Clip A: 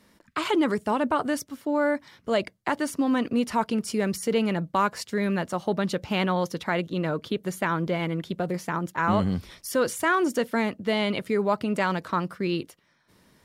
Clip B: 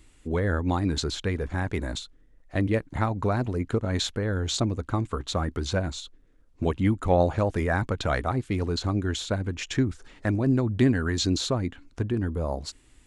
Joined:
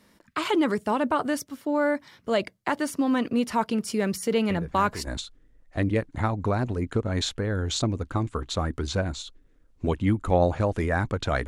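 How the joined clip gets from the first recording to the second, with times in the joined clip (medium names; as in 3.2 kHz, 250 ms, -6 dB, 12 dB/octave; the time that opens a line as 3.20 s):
clip A
4.50 s: add clip B from 1.28 s 0.57 s -8.5 dB
5.07 s: go over to clip B from 1.85 s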